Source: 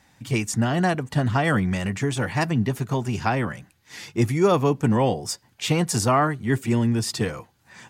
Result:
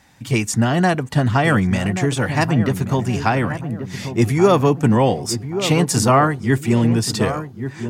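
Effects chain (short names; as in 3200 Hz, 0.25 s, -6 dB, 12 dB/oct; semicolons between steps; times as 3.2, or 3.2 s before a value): darkening echo 1.131 s, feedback 46%, low-pass 910 Hz, level -9 dB; gain +5 dB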